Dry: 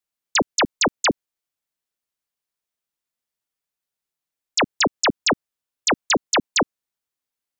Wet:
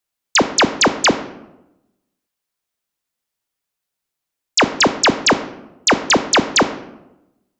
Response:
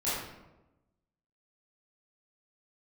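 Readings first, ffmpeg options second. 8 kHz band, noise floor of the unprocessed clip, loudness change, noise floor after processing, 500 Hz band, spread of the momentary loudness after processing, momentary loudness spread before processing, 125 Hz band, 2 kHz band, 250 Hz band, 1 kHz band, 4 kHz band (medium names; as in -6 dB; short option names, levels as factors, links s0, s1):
+5.5 dB, under -85 dBFS, +6.0 dB, -82 dBFS, +6.0 dB, 9 LU, 5 LU, +6.5 dB, +6.0 dB, +6.5 dB, +6.0 dB, +5.5 dB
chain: -filter_complex "[0:a]asplit=2[s0][s1];[s1]highshelf=f=6800:g=-7[s2];[1:a]atrim=start_sample=2205,asetrate=48510,aresample=44100[s3];[s2][s3]afir=irnorm=-1:irlink=0,volume=0.15[s4];[s0][s4]amix=inputs=2:normalize=0,volume=1.78"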